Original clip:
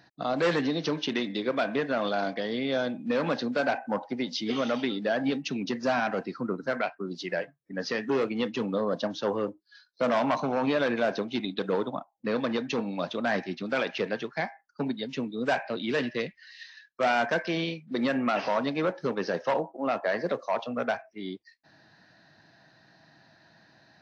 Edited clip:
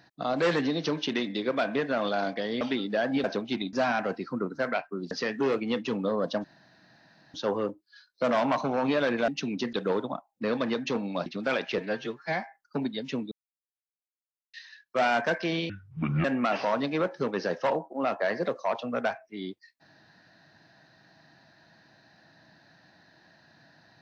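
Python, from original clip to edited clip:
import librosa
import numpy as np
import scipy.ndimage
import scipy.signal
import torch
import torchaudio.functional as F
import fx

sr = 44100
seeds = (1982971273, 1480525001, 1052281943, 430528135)

y = fx.edit(x, sr, fx.cut(start_s=2.61, length_s=2.12),
    fx.swap(start_s=5.36, length_s=0.45, other_s=11.07, other_length_s=0.49),
    fx.cut(start_s=7.19, length_s=0.61),
    fx.insert_room_tone(at_s=9.13, length_s=0.9),
    fx.cut(start_s=13.09, length_s=0.43),
    fx.stretch_span(start_s=14.04, length_s=0.43, factor=1.5),
    fx.silence(start_s=15.36, length_s=1.22),
    fx.speed_span(start_s=17.74, length_s=0.34, speed=0.62), tone=tone)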